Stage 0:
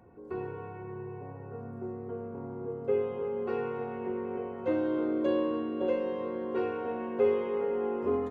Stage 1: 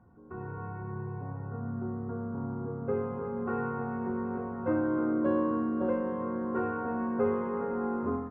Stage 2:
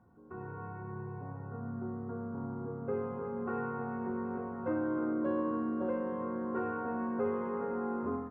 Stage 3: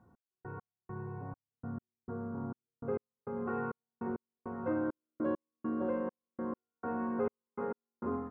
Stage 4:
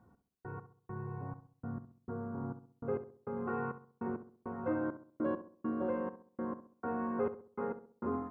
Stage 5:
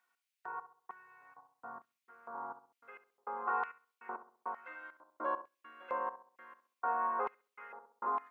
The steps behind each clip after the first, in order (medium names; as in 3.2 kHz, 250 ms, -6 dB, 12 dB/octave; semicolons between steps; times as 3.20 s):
FFT filter 230 Hz 0 dB, 410 Hz -12 dB, 1.4 kHz 0 dB, 2.2 kHz -16 dB, 3.2 kHz -26 dB; level rider gain up to 7.5 dB
bass shelf 100 Hz -6.5 dB; in parallel at 0 dB: peak limiter -24.5 dBFS, peak gain reduction 7 dB; on the sum: trim -8.5 dB
trance gate "x..x..xx" 101 bpm -60 dB
filtered feedback delay 66 ms, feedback 42%, low-pass 1.4 kHz, level -11 dB
LFO high-pass square 1.1 Hz 910–2300 Hz; trim +2.5 dB